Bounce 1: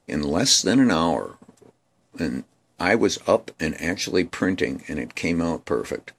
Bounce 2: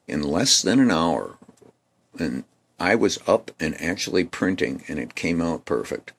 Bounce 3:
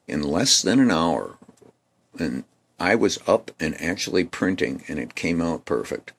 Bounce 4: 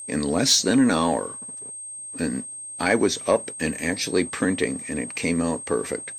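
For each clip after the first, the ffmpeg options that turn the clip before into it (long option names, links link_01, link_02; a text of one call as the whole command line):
ffmpeg -i in.wav -af "highpass=76" out.wav
ffmpeg -i in.wav -af anull out.wav
ffmpeg -i in.wav -af "asoftclip=type=tanh:threshold=-7.5dB,aeval=exprs='val(0)+0.02*sin(2*PI*8400*n/s)':channel_layout=same" out.wav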